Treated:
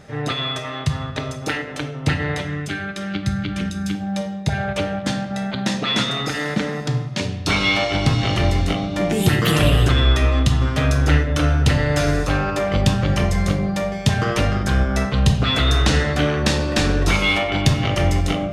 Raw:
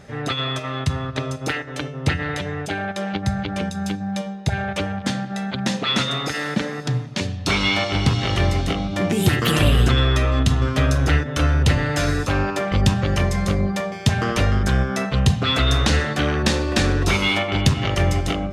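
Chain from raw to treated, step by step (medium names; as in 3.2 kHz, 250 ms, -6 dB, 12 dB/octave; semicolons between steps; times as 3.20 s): 2.42–3.95 s: high-order bell 670 Hz -11.5 dB 1.3 oct; simulated room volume 230 m³, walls mixed, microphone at 0.49 m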